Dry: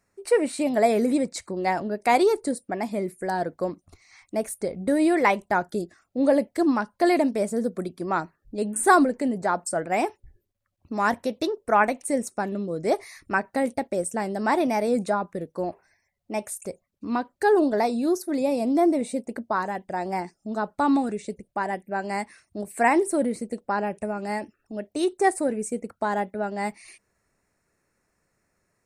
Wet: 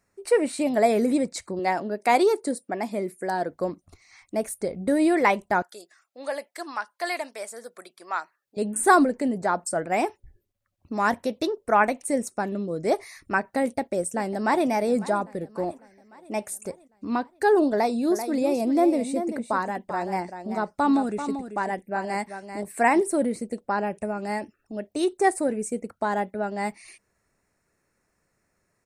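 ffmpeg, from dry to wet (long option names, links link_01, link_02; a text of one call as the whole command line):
ffmpeg -i in.wav -filter_complex "[0:a]asettb=1/sr,asplit=3[link_01][link_02][link_03];[link_01]atrim=end=1.594[link_04];[link_02]atrim=start=1.59:end=3.51,asetpts=PTS-STARTPTS,afade=type=in:duration=0.004:curve=qsin,afade=type=out:start_time=1.916:duration=0.004:curve=qsin,highpass=190[link_05];[link_03]atrim=start=3.506[link_06];[link_04][link_05]acrossfade=duration=0.004:curve1=hsin:curve2=qsin[link_07];[link_07][link_06]acrossfade=duration=0.004:curve1=qsin:curve2=hsin,asettb=1/sr,asplit=3[link_08][link_09][link_10];[link_08]atrim=end=5.624[link_11];[link_09]atrim=start=5.62:end=8.57,asetpts=PTS-STARTPTS,afade=type=in:duration=0.004:curve=qsin,afade=type=out:start_time=2.946:duration=0.004:curve=qsin,highpass=1000[link_12];[link_10]atrim=start=8.566[link_13];[link_11][link_12]acrossfade=duration=0.004:curve1=hsin:curve2=qsin[link_14];[link_14][link_13]acrossfade=duration=0.004:curve1=qsin:curve2=hsin,asplit=2[link_15][link_16];[link_16]afade=type=in:start_time=13.61:duration=0.01,afade=type=out:start_time=14.67:duration=0.01,aecho=0:1:550|1100|1650|2200|2750:0.133352|0.0733437|0.040339|0.0221865|0.0122026[link_17];[link_15][link_17]amix=inputs=2:normalize=0,asettb=1/sr,asplit=3[link_18][link_19][link_20];[link_18]atrim=end=17.714[link_21];[link_19]atrim=start=17.71:end=23.01,asetpts=PTS-STARTPTS,afade=type=in:duration=0.004:curve=qsin,afade=type=out:start_time=5.296:duration=0.004:curve=qsin,aecho=1:1:388:0.335,atrim=end_sample=233730[link_22];[link_20]atrim=start=23.006[link_23];[link_21][link_22]acrossfade=duration=0.004:curve1=hsin:curve2=qsin[link_24];[link_24][link_23]acrossfade=duration=0.004:curve1=qsin:curve2=hsin" out.wav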